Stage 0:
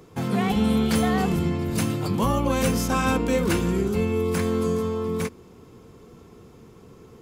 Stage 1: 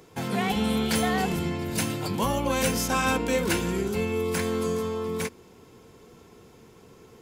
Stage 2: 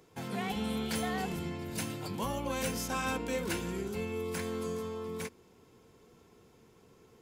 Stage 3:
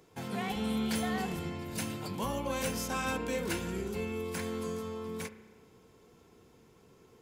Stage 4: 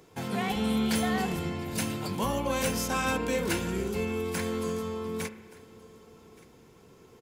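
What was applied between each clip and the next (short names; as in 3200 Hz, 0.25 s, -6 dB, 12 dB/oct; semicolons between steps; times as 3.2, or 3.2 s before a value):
low shelf 470 Hz -8.5 dB; notch 1200 Hz, Q 6.1; gain +2 dB
hard clip -15.5 dBFS, distortion -35 dB; gain -9 dB
reverb RT60 1.3 s, pre-delay 32 ms, DRR 12 dB
echo 1.174 s -22.5 dB; gain +5 dB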